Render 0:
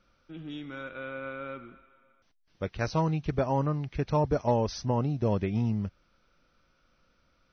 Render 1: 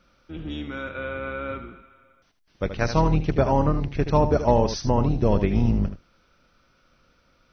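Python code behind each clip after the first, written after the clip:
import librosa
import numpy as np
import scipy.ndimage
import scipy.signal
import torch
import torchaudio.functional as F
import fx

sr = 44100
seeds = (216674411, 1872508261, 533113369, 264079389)

y = fx.octave_divider(x, sr, octaves=2, level_db=2.0)
y = fx.low_shelf(y, sr, hz=100.0, db=-6.0)
y = y + 10.0 ** (-10.0 / 20.0) * np.pad(y, (int(77 * sr / 1000.0), 0))[:len(y)]
y = F.gain(torch.from_numpy(y), 6.5).numpy()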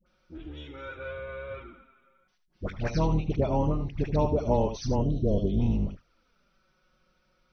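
y = fx.spec_box(x, sr, start_s=4.97, length_s=0.59, low_hz=730.0, high_hz=2900.0, gain_db=-18)
y = fx.env_flanger(y, sr, rest_ms=5.6, full_db=-18.5)
y = fx.dispersion(y, sr, late='highs', ms=63.0, hz=840.0)
y = F.gain(torch.from_numpy(y), -4.5).numpy()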